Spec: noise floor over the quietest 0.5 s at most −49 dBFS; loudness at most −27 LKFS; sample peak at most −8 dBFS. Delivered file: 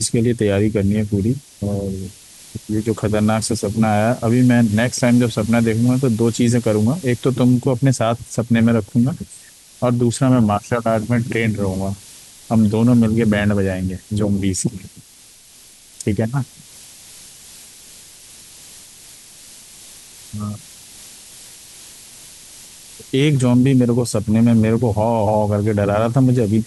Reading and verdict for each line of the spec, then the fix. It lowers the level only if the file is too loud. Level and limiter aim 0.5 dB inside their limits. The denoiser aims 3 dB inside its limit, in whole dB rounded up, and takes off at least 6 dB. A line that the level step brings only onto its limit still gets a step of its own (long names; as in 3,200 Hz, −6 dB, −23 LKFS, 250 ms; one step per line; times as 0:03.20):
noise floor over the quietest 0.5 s −46 dBFS: out of spec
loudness −17.5 LKFS: out of spec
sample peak −5.0 dBFS: out of spec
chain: level −10 dB